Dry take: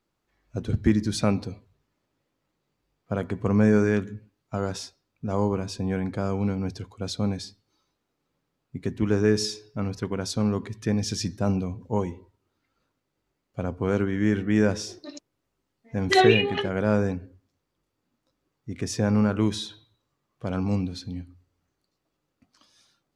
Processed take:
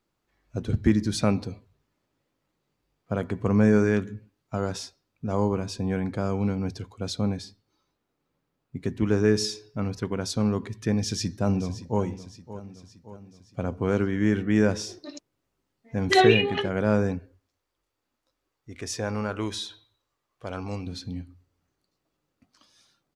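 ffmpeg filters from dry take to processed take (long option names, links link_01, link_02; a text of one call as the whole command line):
ffmpeg -i in.wav -filter_complex "[0:a]asettb=1/sr,asplit=3[link_01][link_02][link_03];[link_01]atrim=end=7.214[link_04];[link_02]atrim=start=7.21:end=8.76,asetpts=PTS-STARTPTS,afade=type=in:duration=0.004:curve=qsin,afade=type=out:start_time=1.546:duration=0.004:curve=qsin,equalizer=frequency=6900:width_type=o:width=2.4:gain=-4[link_05];[link_03]atrim=start=8.756[link_06];[link_04][link_05]acrossfade=duration=0.004:curve1=hsin:curve2=qsin[link_07];[link_07][link_06]acrossfade=duration=0.004:curve1=qsin:curve2=hsin,asplit=2[link_08][link_09];[link_09]afade=type=in:start_time=10.92:duration=0.01,afade=type=out:start_time=12.02:duration=0.01,aecho=0:1:570|1140|1710|2280|2850:0.188365|0.103601|0.0569804|0.0313392|0.0172366[link_10];[link_08][link_10]amix=inputs=2:normalize=0,asettb=1/sr,asplit=3[link_11][link_12][link_13];[link_11]atrim=end=17.194[link_14];[link_12]atrim=start=17.19:end=20.87,asetpts=PTS-STARTPTS,afade=type=in:duration=0.004:curve=qsin,afade=type=out:start_time=3.676:duration=0.004:curve=qsin,equalizer=frequency=170:width=0.76:gain=-12.5[link_15];[link_13]atrim=start=20.866[link_16];[link_14][link_15]acrossfade=duration=0.004:curve1=hsin:curve2=qsin[link_17];[link_17][link_16]acrossfade=duration=0.004:curve1=qsin:curve2=hsin" out.wav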